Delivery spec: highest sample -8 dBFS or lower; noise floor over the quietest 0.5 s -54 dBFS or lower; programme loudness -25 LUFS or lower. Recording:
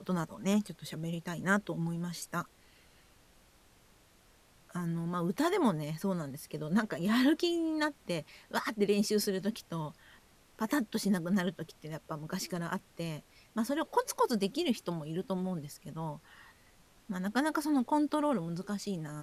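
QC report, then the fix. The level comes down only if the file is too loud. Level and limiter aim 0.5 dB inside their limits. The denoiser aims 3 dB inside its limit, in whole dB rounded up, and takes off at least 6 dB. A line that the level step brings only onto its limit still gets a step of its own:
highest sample -15.0 dBFS: pass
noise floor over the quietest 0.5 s -63 dBFS: pass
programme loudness -33.5 LUFS: pass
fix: none needed

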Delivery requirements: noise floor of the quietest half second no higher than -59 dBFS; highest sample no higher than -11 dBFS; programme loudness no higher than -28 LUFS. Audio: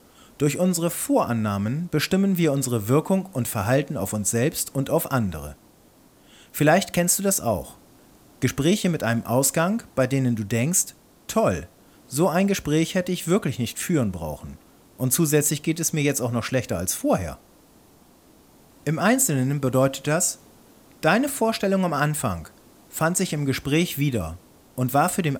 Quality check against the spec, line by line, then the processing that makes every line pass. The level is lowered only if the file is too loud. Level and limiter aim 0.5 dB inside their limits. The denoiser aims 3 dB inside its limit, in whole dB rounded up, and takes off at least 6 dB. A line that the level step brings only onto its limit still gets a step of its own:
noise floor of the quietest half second -54 dBFS: fail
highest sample -6.0 dBFS: fail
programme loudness -23.0 LUFS: fail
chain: trim -5.5 dB

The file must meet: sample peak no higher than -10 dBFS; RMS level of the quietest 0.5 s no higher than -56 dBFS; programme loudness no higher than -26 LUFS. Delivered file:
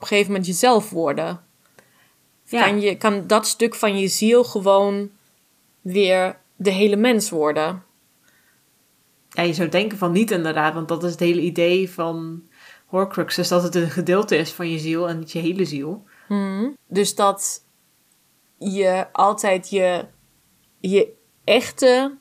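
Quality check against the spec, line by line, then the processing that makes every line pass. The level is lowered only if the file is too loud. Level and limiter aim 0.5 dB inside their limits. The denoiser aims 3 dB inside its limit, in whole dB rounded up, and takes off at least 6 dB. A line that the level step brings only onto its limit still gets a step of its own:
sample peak -3.5 dBFS: fail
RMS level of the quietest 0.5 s -61 dBFS: pass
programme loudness -20.0 LUFS: fail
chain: trim -6.5 dB; peak limiter -10.5 dBFS

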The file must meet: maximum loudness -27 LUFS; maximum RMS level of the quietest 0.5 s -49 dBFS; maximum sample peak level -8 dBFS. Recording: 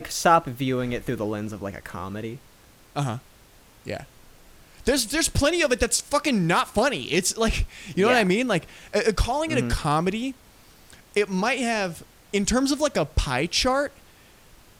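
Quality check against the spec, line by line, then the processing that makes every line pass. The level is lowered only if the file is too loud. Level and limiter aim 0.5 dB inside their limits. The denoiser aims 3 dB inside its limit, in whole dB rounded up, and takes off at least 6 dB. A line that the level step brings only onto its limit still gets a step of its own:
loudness -24.0 LUFS: fail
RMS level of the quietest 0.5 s -53 dBFS: pass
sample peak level -5.5 dBFS: fail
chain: trim -3.5 dB

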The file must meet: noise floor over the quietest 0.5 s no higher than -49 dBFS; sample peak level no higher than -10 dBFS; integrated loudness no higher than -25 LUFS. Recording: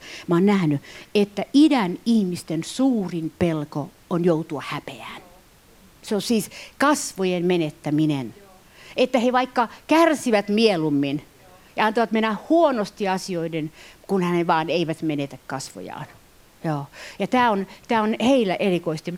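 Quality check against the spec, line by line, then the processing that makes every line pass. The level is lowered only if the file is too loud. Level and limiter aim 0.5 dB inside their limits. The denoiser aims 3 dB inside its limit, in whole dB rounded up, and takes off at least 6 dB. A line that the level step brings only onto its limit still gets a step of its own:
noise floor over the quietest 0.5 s -52 dBFS: pass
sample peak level -3.5 dBFS: fail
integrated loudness -22.0 LUFS: fail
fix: trim -3.5 dB; peak limiter -10.5 dBFS

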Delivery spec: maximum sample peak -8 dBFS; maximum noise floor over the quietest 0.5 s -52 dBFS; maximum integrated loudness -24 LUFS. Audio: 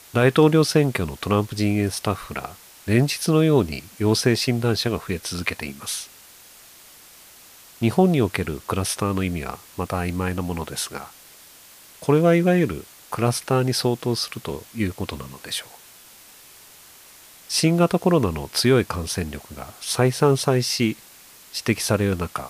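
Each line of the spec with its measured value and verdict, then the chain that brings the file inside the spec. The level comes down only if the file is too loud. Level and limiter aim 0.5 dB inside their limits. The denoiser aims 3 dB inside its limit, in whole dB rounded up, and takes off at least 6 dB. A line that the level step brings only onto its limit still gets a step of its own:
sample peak -5.0 dBFS: fail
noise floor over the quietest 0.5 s -48 dBFS: fail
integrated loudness -22.0 LUFS: fail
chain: noise reduction 6 dB, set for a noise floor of -48 dBFS; trim -2.5 dB; peak limiter -8.5 dBFS

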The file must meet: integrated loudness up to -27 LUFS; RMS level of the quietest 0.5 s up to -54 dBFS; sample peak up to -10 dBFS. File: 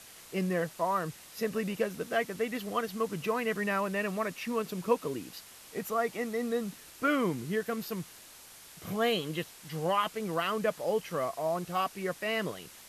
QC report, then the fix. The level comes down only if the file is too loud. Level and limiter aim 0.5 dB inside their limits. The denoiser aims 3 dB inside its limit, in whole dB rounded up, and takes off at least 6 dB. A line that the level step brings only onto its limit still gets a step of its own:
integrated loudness -32.5 LUFS: pass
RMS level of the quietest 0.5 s -52 dBFS: fail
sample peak -14.0 dBFS: pass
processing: noise reduction 6 dB, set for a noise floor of -52 dBFS

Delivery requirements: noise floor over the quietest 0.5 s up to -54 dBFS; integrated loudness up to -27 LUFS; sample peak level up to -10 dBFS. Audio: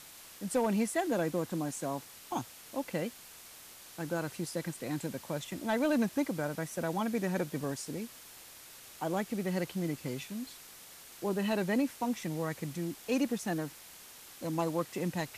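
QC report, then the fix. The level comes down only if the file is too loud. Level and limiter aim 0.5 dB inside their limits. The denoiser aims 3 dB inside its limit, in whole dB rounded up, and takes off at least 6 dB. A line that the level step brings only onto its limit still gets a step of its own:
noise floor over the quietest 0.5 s -52 dBFS: fail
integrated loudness -34.5 LUFS: pass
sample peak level -21.0 dBFS: pass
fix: noise reduction 6 dB, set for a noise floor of -52 dBFS

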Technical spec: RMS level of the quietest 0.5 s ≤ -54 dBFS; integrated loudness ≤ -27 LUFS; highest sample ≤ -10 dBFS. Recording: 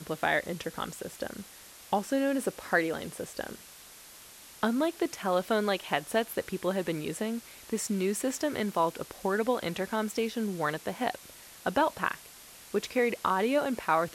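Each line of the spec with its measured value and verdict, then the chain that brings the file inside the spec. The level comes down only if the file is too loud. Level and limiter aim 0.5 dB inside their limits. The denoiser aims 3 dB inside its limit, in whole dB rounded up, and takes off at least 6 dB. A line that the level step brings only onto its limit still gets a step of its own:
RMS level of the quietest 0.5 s -51 dBFS: fail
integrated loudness -31.0 LUFS: pass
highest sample -11.0 dBFS: pass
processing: noise reduction 6 dB, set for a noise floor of -51 dBFS

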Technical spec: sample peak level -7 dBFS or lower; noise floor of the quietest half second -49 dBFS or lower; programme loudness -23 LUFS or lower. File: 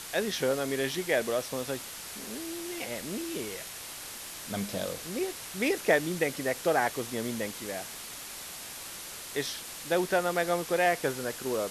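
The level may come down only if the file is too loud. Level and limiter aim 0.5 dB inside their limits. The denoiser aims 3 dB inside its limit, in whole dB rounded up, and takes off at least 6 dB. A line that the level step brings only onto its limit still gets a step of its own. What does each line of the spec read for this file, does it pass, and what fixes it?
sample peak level -10.0 dBFS: pass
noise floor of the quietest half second -42 dBFS: fail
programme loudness -31.5 LUFS: pass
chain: noise reduction 10 dB, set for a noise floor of -42 dBFS

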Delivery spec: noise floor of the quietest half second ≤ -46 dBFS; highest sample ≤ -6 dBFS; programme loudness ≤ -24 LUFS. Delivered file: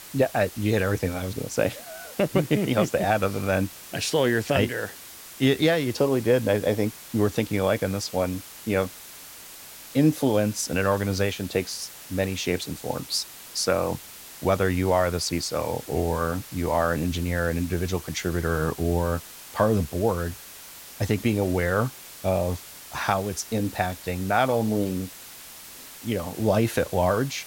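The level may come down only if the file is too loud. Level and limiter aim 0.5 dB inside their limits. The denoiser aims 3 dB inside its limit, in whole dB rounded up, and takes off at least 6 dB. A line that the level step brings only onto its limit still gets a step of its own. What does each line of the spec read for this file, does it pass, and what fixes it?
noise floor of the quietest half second -44 dBFS: fail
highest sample -9.5 dBFS: pass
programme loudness -25.5 LUFS: pass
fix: noise reduction 6 dB, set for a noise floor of -44 dBFS

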